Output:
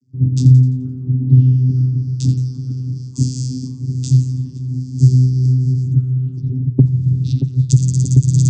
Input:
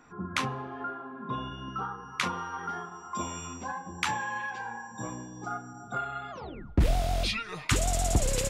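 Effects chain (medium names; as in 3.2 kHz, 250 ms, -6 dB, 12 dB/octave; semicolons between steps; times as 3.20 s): 5.91–7.58 s: resonances exaggerated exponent 1.5; gate with hold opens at -39 dBFS; inverse Chebyshev band-stop 450–2600 Hz, stop band 50 dB; peaking EQ 660 Hz -13 dB 0.77 oct; compression 5:1, threshold -32 dBFS, peak gain reduction 12.5 dB; vocoder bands 16, saw 128 Hz; two-band feedback delay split 1 kHz, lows 627 ms, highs 86 ms, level -11 dB; loudness maximiser +33 dB; tape noise reduction on one side only decoder only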